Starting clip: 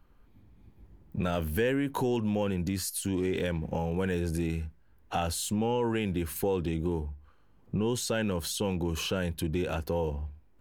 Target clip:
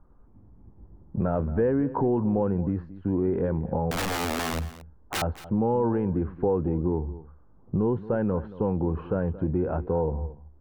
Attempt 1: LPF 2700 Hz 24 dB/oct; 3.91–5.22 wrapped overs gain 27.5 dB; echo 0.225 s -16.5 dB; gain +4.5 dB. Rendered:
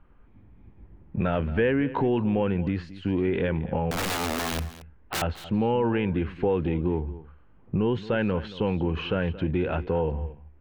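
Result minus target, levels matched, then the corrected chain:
2000 Hz band +5.0 dB
LPF 1200 Hz 24 dB/oct; 3.91–5.22 wrapped overs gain 27.5 dB; echo 0.225 s -16.5 dB; gain +4.5 dB

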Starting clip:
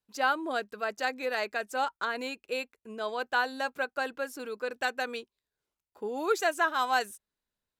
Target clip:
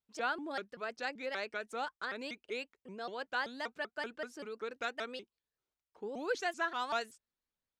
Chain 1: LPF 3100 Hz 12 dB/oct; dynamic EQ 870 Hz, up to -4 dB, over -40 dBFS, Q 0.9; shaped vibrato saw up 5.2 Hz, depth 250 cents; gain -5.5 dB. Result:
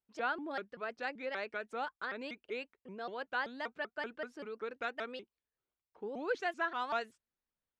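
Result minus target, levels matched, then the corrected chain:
8000 Hz band -11.0 dB
LPF 6600 Hz 12 dB/oct; dynamic EQ 870 Hz, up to -4 dB, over -40 dBFS, Q 0.9; shaped vibrato saw up 5.2 Hz, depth 250 cents; gain -5.5 dB

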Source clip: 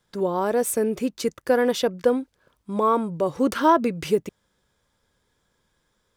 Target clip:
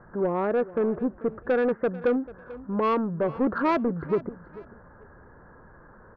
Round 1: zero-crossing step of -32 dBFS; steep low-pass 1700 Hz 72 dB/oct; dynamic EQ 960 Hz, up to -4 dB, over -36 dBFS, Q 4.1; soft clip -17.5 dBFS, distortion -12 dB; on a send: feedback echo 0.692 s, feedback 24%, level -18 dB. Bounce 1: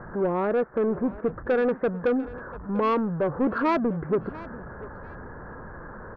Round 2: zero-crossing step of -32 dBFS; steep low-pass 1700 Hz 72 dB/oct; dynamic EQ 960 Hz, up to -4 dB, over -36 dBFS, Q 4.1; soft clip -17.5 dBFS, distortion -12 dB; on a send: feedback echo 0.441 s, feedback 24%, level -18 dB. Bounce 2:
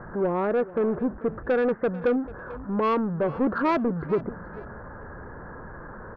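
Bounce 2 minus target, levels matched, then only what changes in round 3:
zero-crossing step: distortion +10 dB
change: zero-crossing step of -43 dBFS

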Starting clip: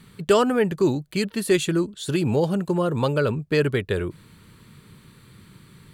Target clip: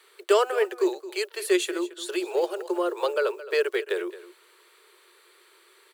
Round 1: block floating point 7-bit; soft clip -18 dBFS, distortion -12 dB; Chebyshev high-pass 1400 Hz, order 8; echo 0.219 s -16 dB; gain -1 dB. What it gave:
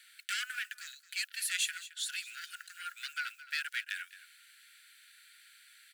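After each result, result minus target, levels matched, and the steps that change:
soft clip: distortion +16 dB; 1000 Hz band -5.5 dB
change: soft clip -6.5 dBFS, distortion -28 dB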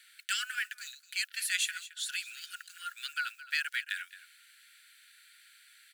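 1000 Hz band -5.5 dB
change: Chebyshev high-pass 350 Hz, order 8

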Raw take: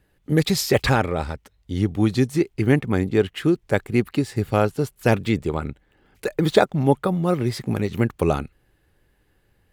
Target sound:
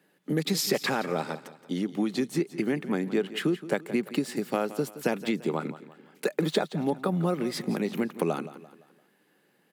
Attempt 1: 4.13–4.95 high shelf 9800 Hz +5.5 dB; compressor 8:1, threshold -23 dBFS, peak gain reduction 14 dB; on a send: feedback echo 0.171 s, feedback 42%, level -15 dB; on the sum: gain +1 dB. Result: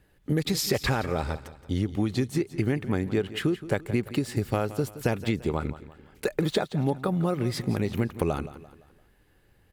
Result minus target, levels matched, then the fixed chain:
125 Hz band +6.0 dB
4.13–4.95 high shelf 9800 Hz +5.5 dB; compressor 8:1, threshold -23 dBFS, peak gain reduction 14 dB; steep high-pass 160 Hz 48 dB/oct; on a send: feedback echo 0.171 s, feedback 42%, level -15 dB; on the sum: gain +1 dB

